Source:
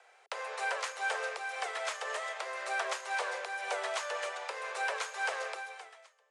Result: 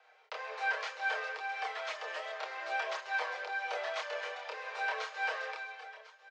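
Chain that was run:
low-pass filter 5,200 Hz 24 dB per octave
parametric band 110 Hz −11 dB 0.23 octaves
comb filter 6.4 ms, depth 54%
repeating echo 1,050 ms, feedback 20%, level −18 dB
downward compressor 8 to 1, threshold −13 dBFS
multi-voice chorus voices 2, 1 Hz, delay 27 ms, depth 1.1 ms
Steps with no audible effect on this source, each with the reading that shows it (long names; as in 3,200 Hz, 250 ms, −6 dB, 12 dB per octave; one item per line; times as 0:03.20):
parametric band 110 Hz: nothing at its input below 340 Hz
downward compressor, threshold −13 dBFS: peak of its input −19.0 dBFS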